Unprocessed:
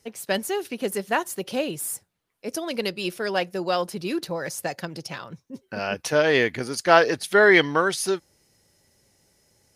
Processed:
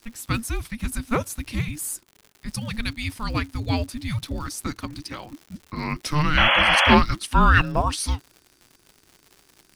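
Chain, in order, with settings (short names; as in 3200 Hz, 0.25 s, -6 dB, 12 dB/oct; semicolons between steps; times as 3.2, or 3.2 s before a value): crackle 150/s -36 dBFS; frequency shift -450 Hz; painted sound noise, 6.37–6.95, 500–3400 Hz -18 dBFS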